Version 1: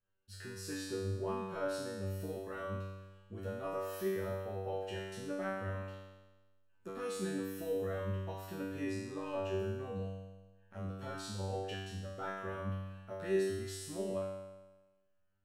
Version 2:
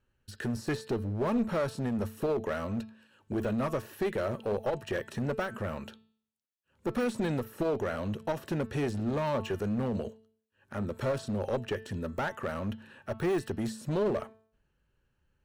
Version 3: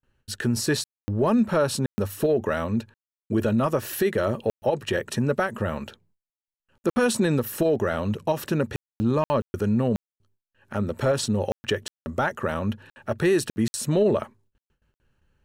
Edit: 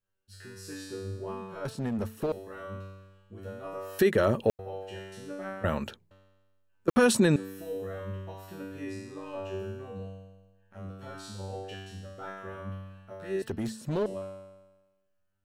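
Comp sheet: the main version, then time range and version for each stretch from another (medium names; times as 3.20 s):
1
1.65–2.32 s: from 2
3.99–4.59 s: from 3
5.64–6.11 s: from 3
6.88–7.36 s: from 3
13.42–14.06 s: from 2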